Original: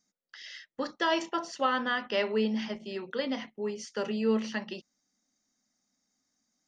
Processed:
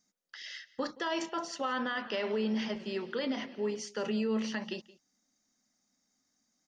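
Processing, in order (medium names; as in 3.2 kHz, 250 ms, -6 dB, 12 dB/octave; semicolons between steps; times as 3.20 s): peak limiter -25.5 dBFS, peak gain reduction 9.5 dB; delay 173 ms -20.5 dB; 1.74–3.80 s: modulated delay 103 ms, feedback 79%, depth 173 cents, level -20 dB; trim +1 dB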